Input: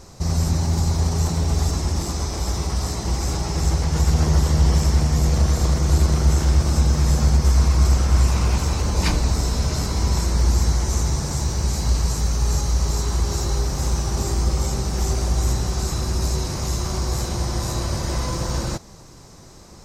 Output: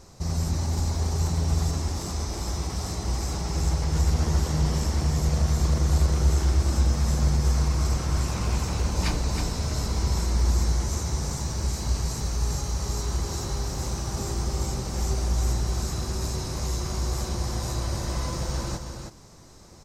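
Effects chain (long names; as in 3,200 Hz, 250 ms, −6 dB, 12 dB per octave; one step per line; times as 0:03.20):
single-tap delay 320 ms −6.5 dB
level −6 dB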